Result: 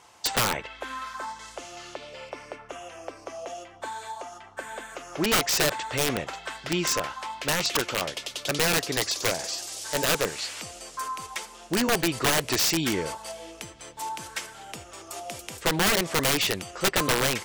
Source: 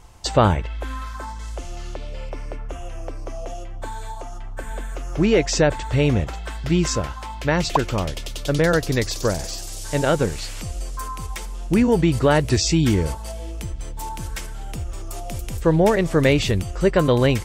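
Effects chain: weighting filter A; wrapped overs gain 16 dB

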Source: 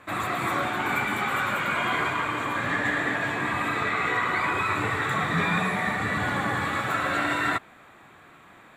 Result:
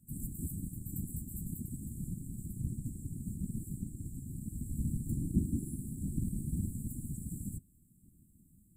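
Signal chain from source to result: Chebyshev band-stop 160–8200 Hz, order 5; whisperiser; gain +2 dB

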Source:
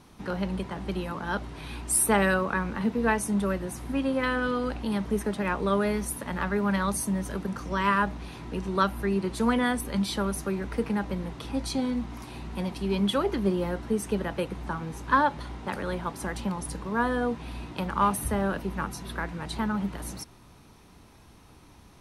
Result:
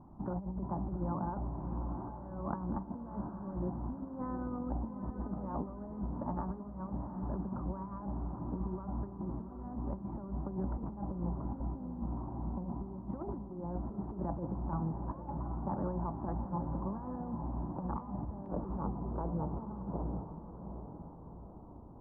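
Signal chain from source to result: steep low-pass 1000 Hz 36 dB/oct; bell 460 Hz -14 dB 0.35 oct, from 18.46 s 1800 Hz; negative-ratio compressor -34 dBFS, ratio -0.5; diffused feedback echo 0.788 s, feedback 48%, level -8.5 dB; gain -3.5 dB

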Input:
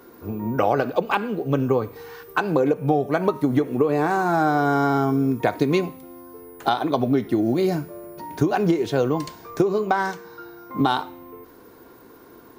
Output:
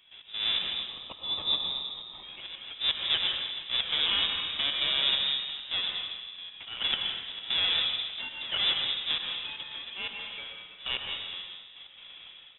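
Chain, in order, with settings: half-waves squared off; spectral gain 0.62–2.23, 290–2400 Hz -15 dB; compressor 8:1, threshold -19 dBFS, peak gain reduction 9 dB; auto swell 0.211 s; step gate ".x.xxx.." 134 bpm -12 dB; on a send at -2 dB: reverb RT60 1.3 s, pre-delay 80 ms; on the sum: inverted band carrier 3700 Hz; frequency-shifting echo 85 ms, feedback 56%, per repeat +45 Hz, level -18 dB; gain -6 dB

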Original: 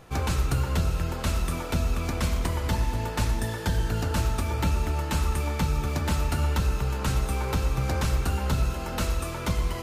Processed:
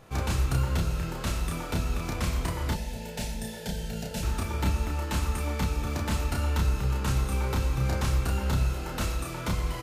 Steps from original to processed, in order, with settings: 2.72–4.23 fixed phaser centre 310 Hz, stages 6; doubler 31 ms -3 dB; gain -3.5 dB

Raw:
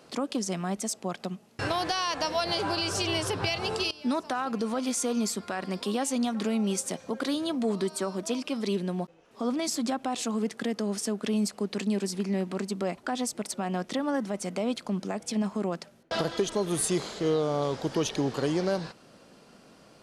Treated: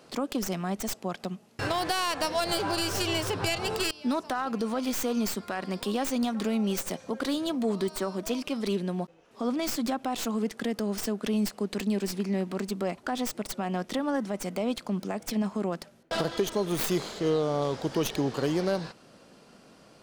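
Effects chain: tracing distortion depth 0.13 ms

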